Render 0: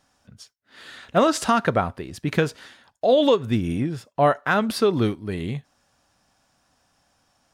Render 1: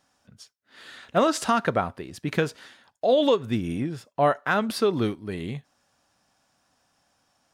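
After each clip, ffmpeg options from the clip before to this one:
ffmpeg -i in.wav -af "lowshelf=frequency=71:gain=-10.5,volume=-2.5dB" out.wav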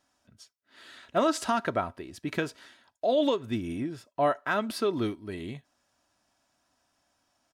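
ffmpeg -i in.wav -af "aecho=1:1:3.1:0.38,volume=-5dB" out.wav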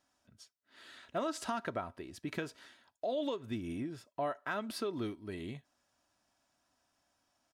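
ffmpeg -i in.wav -af "acompressor=threshold=-32dB:ratio=2,volume=-4.5dB" out.wav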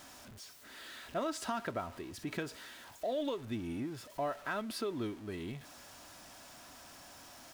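ffmpeg -i in.wav -af "aeval=exprs='val(0)+0.5*0.00447*sgn(val(0))':channel_layout=same,volume=-1dB" out.wav

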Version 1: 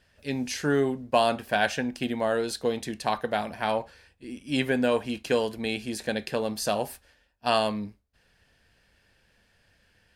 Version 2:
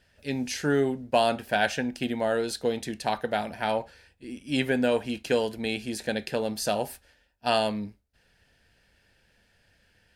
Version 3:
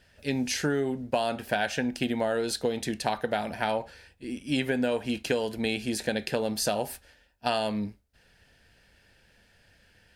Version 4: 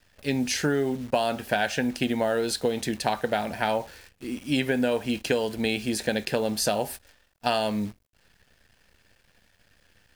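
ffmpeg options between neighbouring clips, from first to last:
ffmpeg -i in.wav -af "bandreject=frequency=1100:width=6.7" out.wav
ffmpeg -i in.wav -af "acompressor=threshold=-27dB:ratio=6,volume=3.5dB" out.wav
ffmpeg -i in.wav -af "acrusher=bits=9:dc=4:mix=0:aa=0.000001,volume=2.5dB" out.wav

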